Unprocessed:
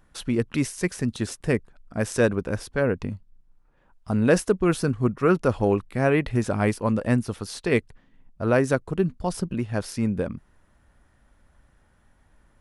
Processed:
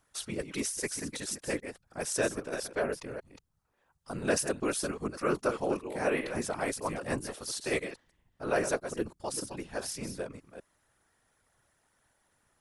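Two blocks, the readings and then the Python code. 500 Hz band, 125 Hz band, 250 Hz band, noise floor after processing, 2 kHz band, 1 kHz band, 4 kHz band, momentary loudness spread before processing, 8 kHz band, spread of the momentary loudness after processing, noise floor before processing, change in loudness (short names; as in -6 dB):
-8.5 dB, -17.5 dB, -12.5 dB, -74 dBFS, -6.0 dB, -6.0 dB, -1.5 dB, 9 LU, +2.0 dB, 11 LU, -62 dBFS, -9.0 dB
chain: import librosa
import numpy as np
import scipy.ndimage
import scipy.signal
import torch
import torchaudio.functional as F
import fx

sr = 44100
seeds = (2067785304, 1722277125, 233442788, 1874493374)

y = fx.reverse_delay(x, sr, ms=200, wet_db=-9)
y = fx.bass_treble(y, sr, bass_db=-14, treble_db=9)
y = fx.whisperise(y, sr, seeds[0])
y = F.gain(torch.from_numpy(y), -7.0).numpy()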